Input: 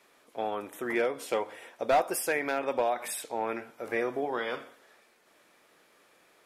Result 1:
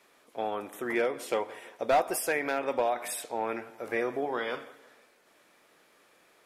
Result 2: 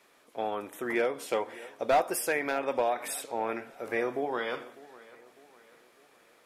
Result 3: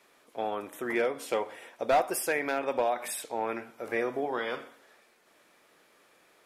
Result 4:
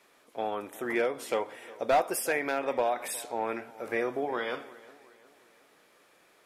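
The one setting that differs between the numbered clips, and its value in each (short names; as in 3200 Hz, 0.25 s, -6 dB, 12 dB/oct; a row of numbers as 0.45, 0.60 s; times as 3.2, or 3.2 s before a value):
dark delay, time: 168, 601, 61, 360 ms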